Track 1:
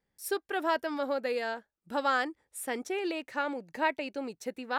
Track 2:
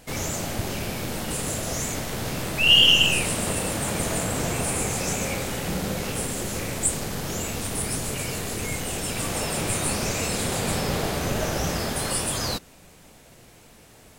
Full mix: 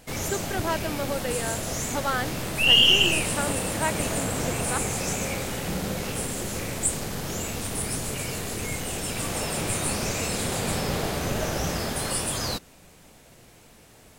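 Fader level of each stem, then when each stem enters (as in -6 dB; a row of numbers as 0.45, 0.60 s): +0.5, -1.5 dB; 0.00, 0.00 s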